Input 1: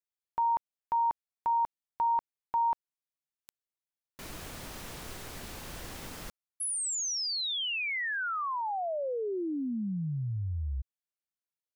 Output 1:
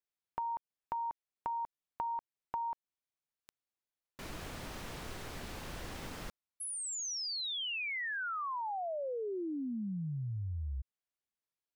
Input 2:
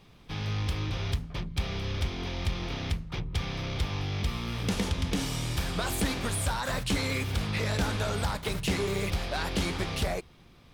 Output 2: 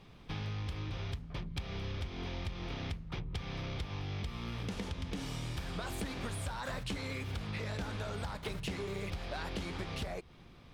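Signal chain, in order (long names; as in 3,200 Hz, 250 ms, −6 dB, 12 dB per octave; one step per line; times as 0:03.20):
high-shelf EQ 6,200 Hz −9 dB
downward compressor 6 to 1, threshold −36 dBFS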